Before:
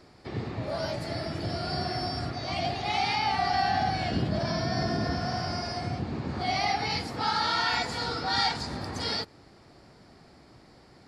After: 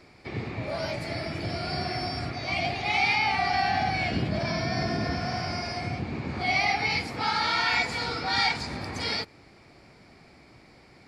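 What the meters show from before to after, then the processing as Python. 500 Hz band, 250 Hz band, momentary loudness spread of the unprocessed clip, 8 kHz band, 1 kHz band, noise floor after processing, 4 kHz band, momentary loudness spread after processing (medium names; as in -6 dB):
0.0 dB, 0.0 dB, 8 LU, 0.0 dB, 0.0 dB, -54 dBFS, +0.5 dB, 9 LU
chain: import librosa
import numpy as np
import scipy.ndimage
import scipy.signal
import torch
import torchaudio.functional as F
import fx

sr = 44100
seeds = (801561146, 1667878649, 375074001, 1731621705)

y = fx.peak_eq(x, sr, hz=2300.0, db=11.5, octaves=0.33)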